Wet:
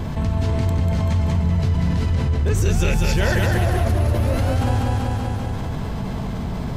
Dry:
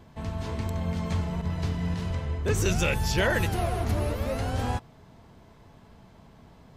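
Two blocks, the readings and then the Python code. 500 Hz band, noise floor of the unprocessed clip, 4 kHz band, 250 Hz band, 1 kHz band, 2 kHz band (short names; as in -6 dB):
+5.5 dB, -54 dBFS, +4.0 dB, +8.5 dB, +6.0 dB, +3.5 dB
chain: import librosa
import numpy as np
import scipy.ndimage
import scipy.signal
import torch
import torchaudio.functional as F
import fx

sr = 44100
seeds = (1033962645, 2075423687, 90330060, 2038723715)

p1 = fx.low_shelf(x, sr, hz=190.0, db=8.5)
p2 = p1 + fx.echo_feedback(p1, sr, ms=192, feedback_pct=50, wet_db=-3.5, dry=0)
p3 = fx.env_flatten(p2, sr, amount_pct=70)
y = p3 * librosa.db_to_amplitude(-2.5)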